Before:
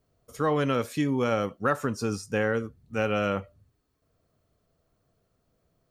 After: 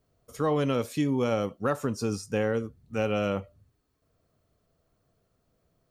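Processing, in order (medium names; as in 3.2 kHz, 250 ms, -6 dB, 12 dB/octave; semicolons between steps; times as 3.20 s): dynamic bell 1.6 kHz, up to -7 dB, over -45 dBFS, Q 1.5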